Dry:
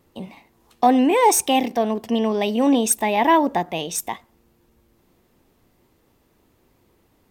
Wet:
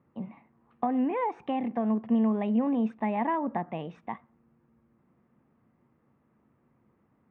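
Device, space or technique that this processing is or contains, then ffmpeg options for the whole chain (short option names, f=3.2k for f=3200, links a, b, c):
bass amplifier: -af "acompressor=threshold=-18dB:ratio=5,highpass=79,equalizer=f=140:t=q:w=4:g=9,equalizer=f=220:t=q:w=4:g=9,equalizer=f=390:t=q:w=4:g=-3,equalizer=f=1.2k:t=q:w=4:g=5,lowpass=f=2.1k:w=0.5412,lowpass=f=2.1k:w=1.3066,volume=-8.5dB"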